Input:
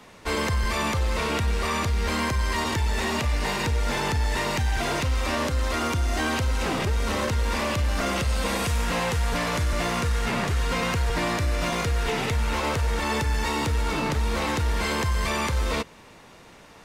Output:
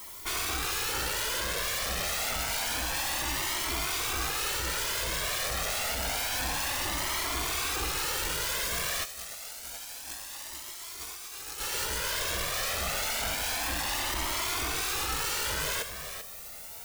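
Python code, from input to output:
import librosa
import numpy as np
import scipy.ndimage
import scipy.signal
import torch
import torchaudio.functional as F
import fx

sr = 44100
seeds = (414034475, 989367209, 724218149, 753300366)

y = (np.mod(10.0 ** (23.5 / 20.0) * x + 1.0, 2.0) - 1.0) / 10.0 ** (23.5 / 20.0)
y = fx.bass_treble(y, sr, bass_db=-4, treble_db=9, at=(9.04, 11.58), fade=0.02)
y = fx.dmg_noise_colour(y, sr, seeds[0], colour='blue', level_db=-41.0)
y = fx.peak_eq(y, sr, hz=180.0, db=-9.0, octaves=1.3)
y = y + 10.0 ** (-9.5 / 20.0) * np.pad(y, (int(390 * sr / 1000.0), 0))[:len(y)]
y = fx.over_compress(y, sr, threshold_db=-28.0, ratio=-0.5)
y = fx.comb_cascade(y, sr, direction='rising', hz=0.28)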